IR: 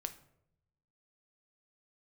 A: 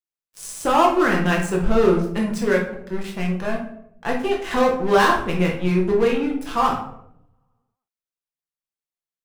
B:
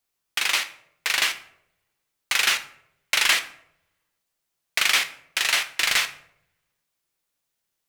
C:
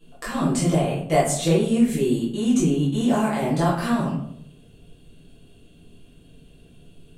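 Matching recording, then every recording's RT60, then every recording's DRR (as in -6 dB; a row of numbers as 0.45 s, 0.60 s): B; 0.75 s, 0.75 s, 0.75 s; -1.5 dB, 8.5 dB, -10.0 dB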